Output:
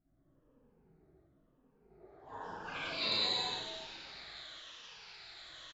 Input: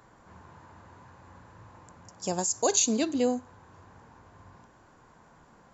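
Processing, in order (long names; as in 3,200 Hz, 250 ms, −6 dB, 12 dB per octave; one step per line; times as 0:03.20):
rippled gain that drifts along the octave scale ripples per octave 0.99, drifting −0.94 Hz, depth 17 dB
downward compressor 4 to 1, threshold −36 dBFS, peak gain reduction 17 dB
octave-band graphic EQ 125/250/500/4,000 Hz −6/+11/+4/+9 dB
gate on every frequency bin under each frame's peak −20 dB weak
transient designer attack −10 dB, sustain +10 dB
low-pass filter sweep 260 Hz → 4,000 Hz, 0:01.72–0:03.05
on a send: echo with shifted repeats 321 ms, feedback 33%, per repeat −100 Hz, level −9 dB
on the sum: reverb whose tail is shaped and stops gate 250 ms flat, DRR −6.5 dB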